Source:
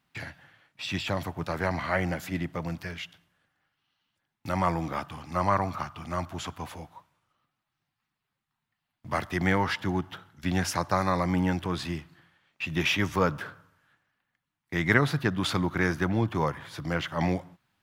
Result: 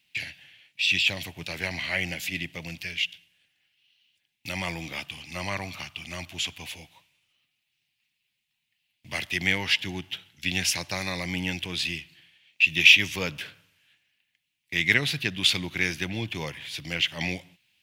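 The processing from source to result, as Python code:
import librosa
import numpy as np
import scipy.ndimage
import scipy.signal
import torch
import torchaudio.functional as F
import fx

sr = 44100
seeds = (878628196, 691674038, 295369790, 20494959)

y = fx.high_shelf_res(x, sr, hz=1800.0, db=12.5, q=3.0)
y = y * 10.0 ** (-6.0 / 20.0)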